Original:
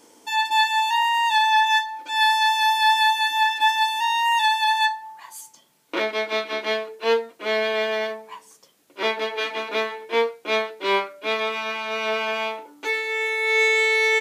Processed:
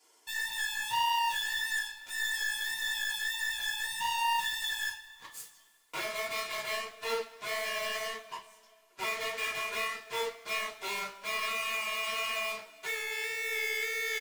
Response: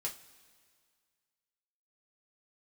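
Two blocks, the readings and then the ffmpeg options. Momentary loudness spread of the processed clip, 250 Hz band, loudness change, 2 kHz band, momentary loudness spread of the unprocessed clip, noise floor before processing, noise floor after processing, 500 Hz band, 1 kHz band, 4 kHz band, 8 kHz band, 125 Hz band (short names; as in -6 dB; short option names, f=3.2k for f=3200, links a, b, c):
8 LU, -18.0 dB, -11.5 dB, -10.0 dB, 10 LU, -57 dBFS, -63 dBFS, -15.0 dB, -15.0 dB, -10.0 dB, -1.5 dB, n/a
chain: -filter_complex "[0:a]highpass=680,aecho=1:1:2.9:0.91,asoftclip=type=tanh:threshold=-24.5dB,aeval=exprs='0.0596*(cos(1*acos(clip(val(0)/0.0596,-1,1)))-cos(1*PI/2))+0.0133*(cos(7*acos(clip(val(0)/0.0596,-1,1)))-cos(7*PI/2))':c=same,flanger=delay=2.1:depth=9.3:regen=-26:speed=1.7:shape=triangular[a];[1:a]atrim=start_sample=2205[b];[a][b]afir=irnorm=-1:irlink=0,volume=-2dB"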